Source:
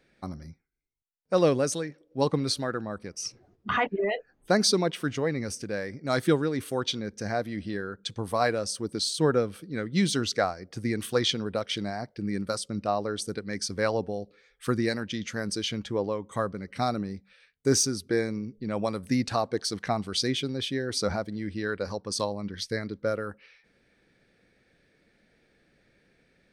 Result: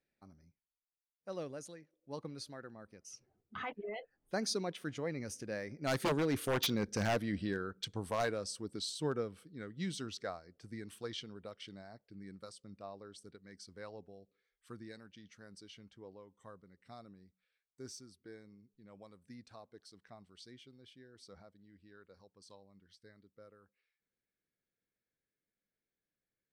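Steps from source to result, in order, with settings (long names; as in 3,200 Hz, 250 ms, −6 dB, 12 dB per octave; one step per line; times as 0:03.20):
source passing by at 0:06.83, 13 m/s, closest 7.1 metres
wave folding −25.5 dBFS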